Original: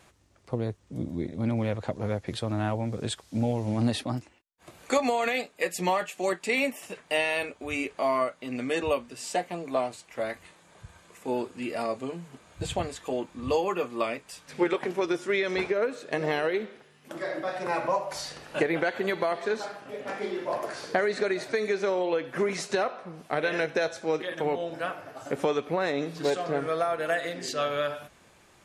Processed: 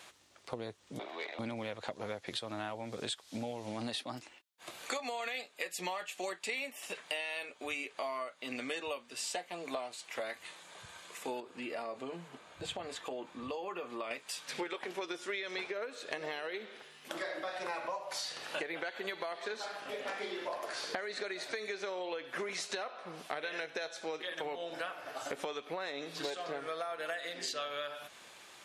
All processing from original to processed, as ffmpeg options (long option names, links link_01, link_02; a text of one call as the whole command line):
ffmpeg -i in.wav -filter_complex "[0:a]asettb=1/sr,asplit=3[link_01][link_02][link_03];[link_01]atrim=end=0.994[link_04];[link_02]atrim=start=0.99:end=1.39,asetpts=PTS-STARTPTS,afade=type=in:duration=0.004:curve=qsin,afade=type=out:start_time=0.396:duration=0.004:curve=qsin,acrossover=split=560 3400:gain=0.1 1 0.0631[link_05][link_06][link_07];[link_05][link_06][link_07]amix=inputs=3:normalize=0,asplit=2[link_08][link_09];[link_09]highpass=frequency=720:poles=1,volume=18dB,asoftclip=type=tanh:threshold=-30dB[link_10];[link_08][link_10]amix=inputs=2:normalize=0,lowpass=frequency=6100:poles=1,volume=-6dB,afreqshift=72[link_11];[link_03]atrim=start=1.386[link_12];[link_04][link_11]acrossfade=duration=0.004:curve1=hsin:curve2=qsin[link_13];[link_13][link_12]acrossfade=duration=0.004:curve1=qsin:curve2=hsin,asettb=1/sr,asplit=3[link_14][link_15][link_16];[link_14]atrim=end=11.404[link_17];[link_15]atrim=start=11.4:end=14.11,asetpts=PTS-STARTPTS,afade=type=in:duration=0.004:curve=qsin,afade=type=out:start_time=2.706:duration=0.004:curve=qsin,highshelf=frequency=2600:gain=-11,acompressor=threshold=-35dB:ratio=2.5:attack=3.2:release=140:knee=1:detection=peak[link_18];[link_16]atrim=start=14.106[link_19];[link_17][link_18]acrossfade=duration=0.004:curve1=hsin:curve2=qsin[link_20];[link_20][link_19]acrossfade=duration=0.004:curve1=qsin:curve2=hsin,highpass=frequency=730:poles=1,equalizer=frequency=3600:width_type=o:width=0.83:gain=5,acompressor=threshold=-41dB:ratio=6,volume=4.5dB" out.wav